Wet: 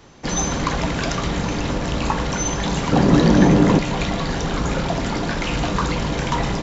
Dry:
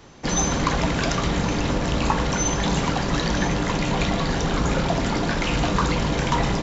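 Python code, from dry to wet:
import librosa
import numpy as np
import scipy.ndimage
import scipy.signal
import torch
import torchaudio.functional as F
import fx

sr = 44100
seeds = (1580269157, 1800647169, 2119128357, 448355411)

y = fx.peak_eq(x, sr, hz=260.0, db=13.0, octaves=2.9, at=(2.92, 3.79))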